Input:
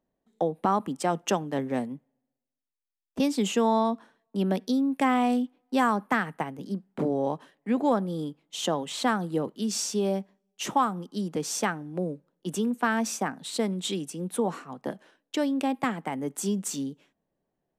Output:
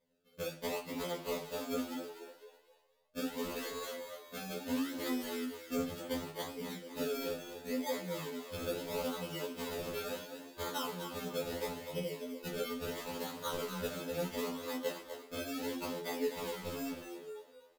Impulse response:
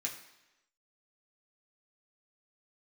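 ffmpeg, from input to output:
-filter_complex "[0:a]equalizer=frequency=3800:width_type=o:width=0.35:gain=8,bandreject=frequency=72.2:width_type=h:width=4,bandreject=frequency=144.4:width_type=h:width=4,bandreject=frequency=216.6:width_type=h:width=4,bandreject=frequency=288.8:width_type=h:width=4,bandreject=frequency=361:width_type=h:width=4,acompressor=threshold=-37dB:ratio=10,acrusher=samples=31:mix=1:aa=0.000001:lfo=1:lforange=31:lforate=0.73,asplit=6[link_01][link_02][link_03][link_04][link_05][link_06];[link_02]adelay=251,afreqshift=77,volume=-8.5dB[link_07];[link_03]adelay=502,afreqshift=154,volume=-16.2dB[link_08];[link_04]adelay=753,afreqshift=231,volume=-24dB[link_09];[link_05]adelay=1004,afreqshift=308,volume=-31.7dB[link_10];[link_06]adelay=1255,afreqshift=385,volume=-39.5dB[link_11];[link_01][link_07][link_08][link_09][link_10][link_11]amix=inputs=6:normalize=0[link_12];[1:a]atrim=start_sample=2205,asetrate=83790,aresample=44100[link_13];[link_12][link_13]afir=irnorm=-1:irlink=0,afftfilt=real='re*2*eq(mod(b,4),0)':imag='im*2*eq(mod(b,4),0)':win_size=2048:overlap=0.75,volume=11dB"

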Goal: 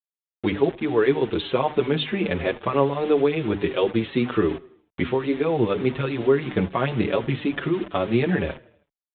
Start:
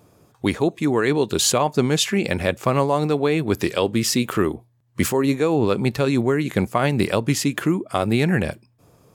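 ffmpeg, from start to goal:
ffmpeg -i in.wav -filter_complex "[0:a]equalizer=frequency=400:width=1.8:gain=5.5,bandreject=frequency=50:width_type=h:width=6,bandreject=frequency=100:width_type=h:width=6,bandreject=frequency=150:width_type=h:width=6,bandreject=frequency=200:width_type=h:width=6,bandreject=frequency=250:width_type=h:width=6,bandreject=frequency=300:width_type=h:width=6,asplit=2[link_01][link_02];[link_02]acompressor=threshold=-28dB:ratio=4,volume=0dB[link_03];[link_01][link_03]amix=inputs=2:normalize=0,acrusher=bits=4:mix=0:aa=0.000001,asplit=2[link_04][link_05];[link_05]aecho=0:1:80|160|240|320:0.0708|0.0396|0.0222|0.0124[link_06];[link_04][link_06]amix=inputs=2:normalize=0,aresample=8000,aresample=44100,asplit=2[link_07][link_08];[link_08]adelay=6.2,afreqshift=-2.3[link_09];[link_07][link_09]amix=inputs=2:normalize=1,volume=-3dB" out.wav

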